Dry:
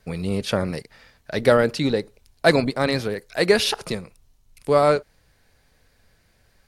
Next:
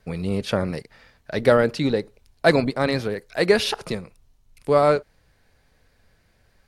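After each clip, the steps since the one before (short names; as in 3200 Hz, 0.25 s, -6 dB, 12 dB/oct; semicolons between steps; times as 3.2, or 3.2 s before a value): high shelf 4000 Hz -5.5 dB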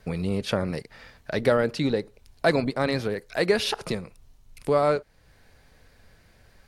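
compressor 1.5:1, threshold -40 dBFS, peak gain reduction 10.5 dB; gain +5 dB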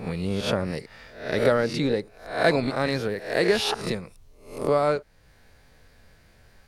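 spectral swells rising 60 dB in 0.50 s; gain -1 dB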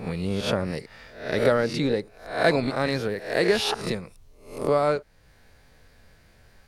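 nothing audible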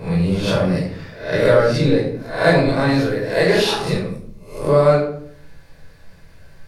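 shoebox room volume 960 m³, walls furnished, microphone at 5.1 m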